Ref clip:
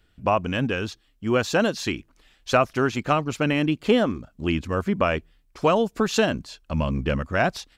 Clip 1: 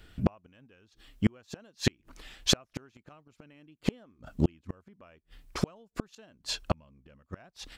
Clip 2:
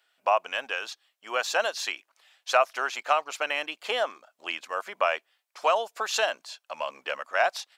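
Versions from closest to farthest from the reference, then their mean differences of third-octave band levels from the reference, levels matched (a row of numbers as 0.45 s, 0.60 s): 2, 1; 10.0 dB, 15.0 dB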